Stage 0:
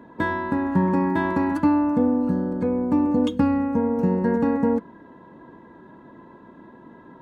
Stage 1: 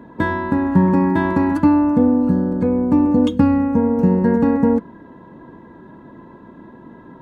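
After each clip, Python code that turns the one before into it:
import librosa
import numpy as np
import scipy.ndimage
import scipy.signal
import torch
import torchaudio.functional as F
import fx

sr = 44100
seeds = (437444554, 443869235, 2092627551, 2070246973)

y = fx.low_shelf(x, sr, hz=230.0, db=6.5)
y = F.gain(torch.from_numpy(y), 3.0).numpy()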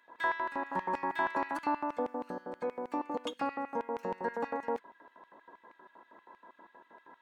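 y = fx.filter_lfo_highpass(x, sr, shape='square', hz=6.3, low_hz=720.0, high_hz=2300.0, q=1.2)
y = F.gain(torch.from_numpy(y), -8.0).numpy()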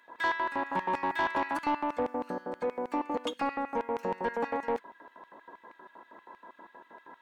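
y = 10.0 ** (-27.0 / 20.0) * np.tanh(x / 10.0 ** (-27.0 / 20.0))
y = F.gain(torch.from_numpy(y), 5.0).numpy()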